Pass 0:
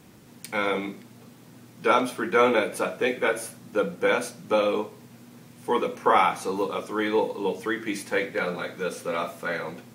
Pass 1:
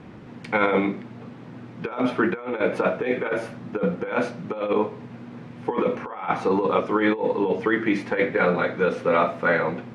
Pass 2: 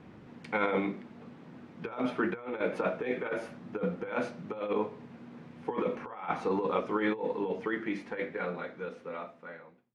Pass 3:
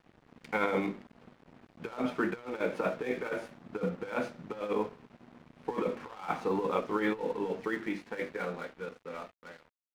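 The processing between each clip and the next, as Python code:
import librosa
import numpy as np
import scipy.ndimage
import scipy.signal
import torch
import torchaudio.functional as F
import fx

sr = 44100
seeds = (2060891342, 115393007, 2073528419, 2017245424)

y1 = scipy.signal.sosfilt(scipy.signal.butter(2, 2200.0, 'lowpass', fs=sr, output='sos'), x)
y1 = fx.over_compress(y1, sr, threshold_db=-27.0, ratio=-0.5)
y1 = y1 * 10.0 ** (6.0 / 20.0)
y2 = fx.fade_out_tail(y1, sr, length_s=2.98)
y2 = fx.hum_notches(y2, sr, base_hz=60, count=2)
y2 = y2 * 10.0 ** (-8.5 / 20.0)
y3 = np.sign(y2) * np.maximum(np.abs(y2) - 10.0 ** (-49.5 / 20.0), 0.0)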